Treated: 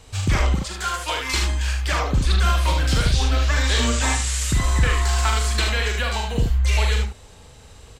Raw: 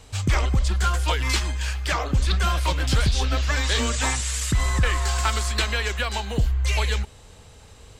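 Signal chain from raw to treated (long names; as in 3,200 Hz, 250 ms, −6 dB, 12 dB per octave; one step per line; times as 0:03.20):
0:00.55–0:01.34: high-pass filter 470 Hz 6 dB per octave
ambience of single reflections 42 ms −5.5 dB, 76 ms −5 dB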